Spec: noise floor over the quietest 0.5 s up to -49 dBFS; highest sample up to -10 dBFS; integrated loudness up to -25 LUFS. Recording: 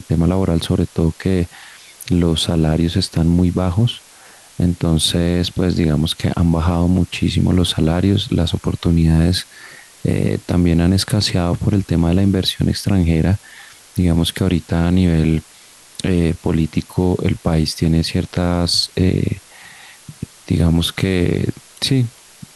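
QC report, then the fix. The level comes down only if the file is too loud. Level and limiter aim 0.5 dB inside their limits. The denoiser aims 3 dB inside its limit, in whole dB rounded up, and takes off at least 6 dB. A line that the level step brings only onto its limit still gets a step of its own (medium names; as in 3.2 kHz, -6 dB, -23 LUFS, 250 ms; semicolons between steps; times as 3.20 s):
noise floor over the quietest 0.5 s -45 dBFS: fail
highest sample -5.0 dBFS: fail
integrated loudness -17.0 LUFS: fail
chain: trim -8.5 dB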